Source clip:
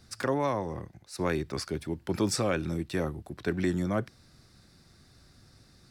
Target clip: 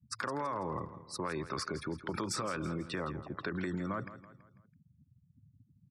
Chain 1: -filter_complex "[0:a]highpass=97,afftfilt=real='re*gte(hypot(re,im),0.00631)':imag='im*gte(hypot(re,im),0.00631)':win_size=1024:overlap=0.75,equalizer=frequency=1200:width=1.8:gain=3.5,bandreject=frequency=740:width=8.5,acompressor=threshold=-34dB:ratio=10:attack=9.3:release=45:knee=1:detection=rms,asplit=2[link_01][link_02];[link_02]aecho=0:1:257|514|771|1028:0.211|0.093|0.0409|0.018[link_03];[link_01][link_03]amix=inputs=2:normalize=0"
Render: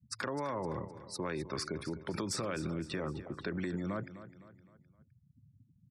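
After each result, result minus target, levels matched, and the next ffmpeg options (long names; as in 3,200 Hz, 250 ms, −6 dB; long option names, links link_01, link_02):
echo 92 ms late; 1,000 Hz band −3.5 dB
-filter_complex "[0:a]highpass=97,afftfilt=real='re*gte(hypot(re,im),0.00631)':imag='im*gte(hypot(re,im),0.00631)':win_size=1024:overlap=0.75,equalizer=frequency=1200:width=1.8:gain=3.5,bandreject=frequency=740:width=8.5,acompressor=threshold=-34dB:ratio=10:attack=9.3:release=45:knee=1:detection=rms,asplit=2[link_01][link_02];[link_02]aecho=0:1:165|330|495|660:0.211|0.093|0.0409|0.018[link_03];[link_01][link_03]amix=inputs=2:normalize=0"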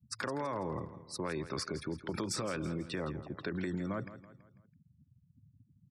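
1,000 Hz band −3.0 dB
-filter_complex "[0:a]highpass=97,afftfilt=real='re*gte(hypot(re,im),0.00631)':imag='im*gte(hypot(re,im),0.00631)':win_size=1024:overlap=0.75,equalizer=frequency=1200:width=1.8:gain=11.5,bandreject=frequency=740:width=8.5,acompressor=threshold=-34dB:ratio=10:attack=9.3:release=45:knee=1:detection=rms,asplit=2[link_01][link_02];[link_02]aecho=0:1:165|330|495|660:0.211|0.093|0.0409|0.018[link_03];[link_01][link_03]amix=inputs=2:normalize=0"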